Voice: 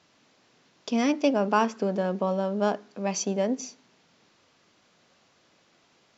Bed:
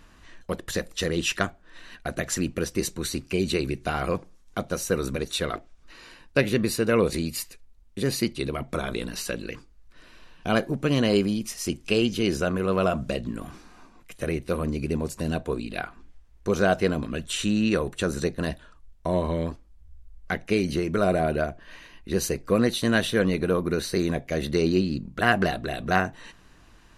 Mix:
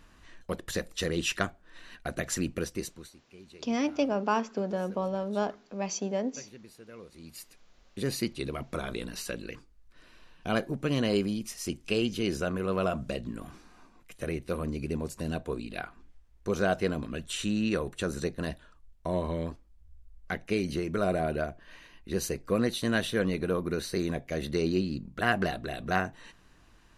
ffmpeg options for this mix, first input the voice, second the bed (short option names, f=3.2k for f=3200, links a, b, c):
-filter_complex "[0:a]adelay=2750,volume=-4.5dB[a];[1:a]volume=17dB,afade=t=out:st=2.55:d=0.57:silence=0.0749894,afade=t=in:st=7.15:d=0.71:silence=0.0891251[b];[a][b]amix=inputs=2:normalize=0"